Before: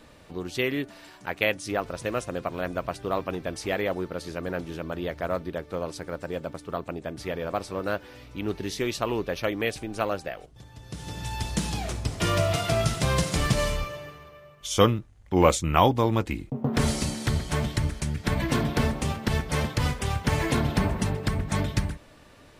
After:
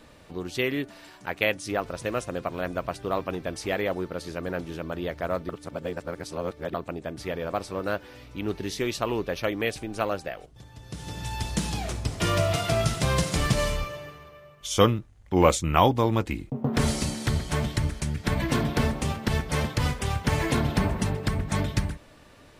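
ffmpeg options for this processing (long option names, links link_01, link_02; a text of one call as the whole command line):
ffmpeg -i in.wav -filter_complex "[0:a]asplit=3[link_01][link_02][link_03];[link_01]atrim=end=5.492[link_04];[link_02]atrim=start=5.488:end=6.742,asetpts=PTS-STARTPTS,areverse[link_05];[link_03]atrim=start=6.738[link_06];[link_04][link_05]acrossfade=duration=0.004:curve1=hsin:curve2=hsin[link_07];[link_07][link_06]acrossfade=duration=0.004:curve1=hsin:curve2=hsin" out.wav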